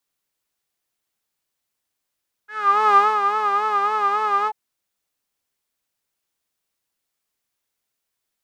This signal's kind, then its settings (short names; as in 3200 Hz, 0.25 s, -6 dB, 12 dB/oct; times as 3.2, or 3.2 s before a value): synth patch with vibrato G#4, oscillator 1 saw, interval +19 st, oscillator 2 level -17 dB, sub -20.5 dB, filter bandpass, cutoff 840 Hz, Q 11, filter envelope 1 oct, attack 0.464 s, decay 0.23 s, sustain -6.5 dB, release 0.05 s, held 1.99 s, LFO 3.6 Hz, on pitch 73 cents